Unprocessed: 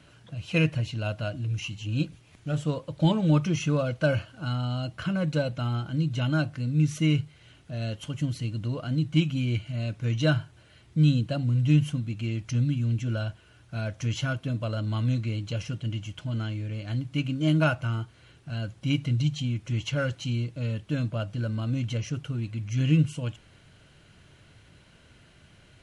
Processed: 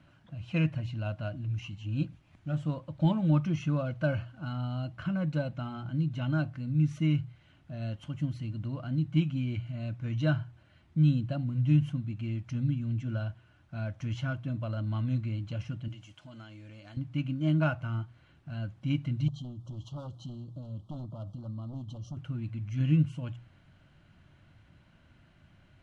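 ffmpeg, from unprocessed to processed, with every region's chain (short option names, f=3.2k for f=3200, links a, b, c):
-filter_complex "[0:a]asettb=1/sr,asplit=3[a][b][c];[a]atrim=end=15.884[d];[b]atrim=start=15.88:end=16.97,asetpts=PTS-STARTPTS,afade=t=in:d=0.004:c=qsin,afade=t=out:st=1.086:d=0.004:c=qsin,bass=f=250:g=-13,treble=f=4k:g=9,acompressor=threshold=-40dB:ratio=3:attack=3.2:release=140:knee=1:detection=peak[e];[c]atrim=start=16.966[f];[d][e]acrossfade=d=0.004:c1=hsin:c2=qsin[g];[g][f]acrossfade=d=0.004:c1=qsin:c2=hsin,asettb=1/sr,asplit=3[h][i][j];[h]atrim=end=19.284[k];[i]atrim=start=19.28:end=22.17,asetpts=PTS-STARTPTS,afade=t=in:d=0.004:c=qsin,afade=t=out:st=2.886:d=0.004:c=qsin,aeval=exprs='0.0668*(abs(mod(val(0)/0.0668+3,4)-2)-1)':c=same,acompressor=threshold=-32dB:ratio=6:attack=3.2:release=140:knee=1:detection=peak,asuperstop=centerf=2000:order=12:qfactor=1.1[l];[j]atrim=start=22.166[m];[k][l]acrossfade=d=0.004:c1=hsin:c2=qsin[n];[n][m]acrossfade=d=0.004:c1=qsin:c2=hsin,lowpass=f=1.3k:p=1,equalizer=f=440:t=o:w=0.39:g=-13.5,bandreject=f=60:t=h:w=6,bandreject=f=120:t=h:w=6,volume=-2.5dB"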